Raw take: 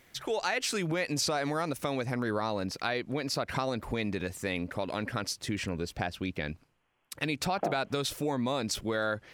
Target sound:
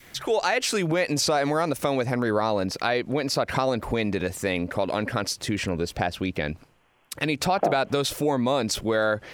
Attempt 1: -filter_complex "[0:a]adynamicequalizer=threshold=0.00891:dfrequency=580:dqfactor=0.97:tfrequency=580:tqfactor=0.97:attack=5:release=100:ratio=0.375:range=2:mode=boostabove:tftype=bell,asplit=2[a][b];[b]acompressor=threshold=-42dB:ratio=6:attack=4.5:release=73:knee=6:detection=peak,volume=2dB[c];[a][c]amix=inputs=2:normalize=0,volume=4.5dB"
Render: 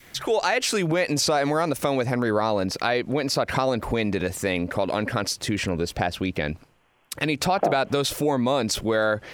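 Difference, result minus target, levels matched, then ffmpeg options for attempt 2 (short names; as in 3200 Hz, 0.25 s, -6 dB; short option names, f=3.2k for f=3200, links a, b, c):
compressor: peak gain reduction -8 dB
-filter_complex "[0:a]adynamicequalizer=threshold=0.00891:dfrequency=580:dqfactor=0.97:tfrequency=580:tqfactor=0.97:attack=5:release=100:ratio=0.375:range=2:mode=boostabove:tftype=bell,asplit=2[a][b];[b]acompressor=threshold=-51.5dB:ratio=6:attack=4.5:release=73:knee=6:detection=peak,volume=2dB[c];[a][c]amix=inputs=2:normalize=0,volume=4.5dB"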